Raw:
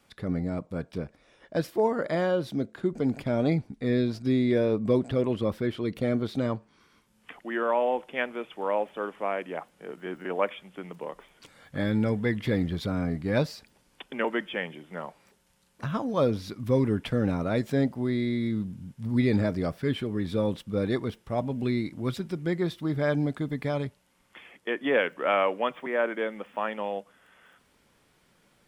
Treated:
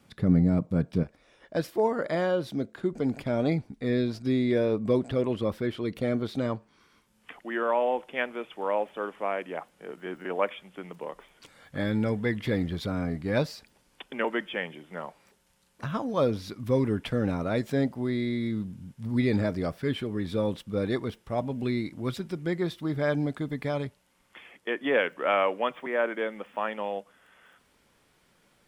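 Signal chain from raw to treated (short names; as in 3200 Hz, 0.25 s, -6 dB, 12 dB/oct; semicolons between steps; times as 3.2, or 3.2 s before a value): bell 150 Hz +10 dB 2.2 oct, from 1.03 s -2 dB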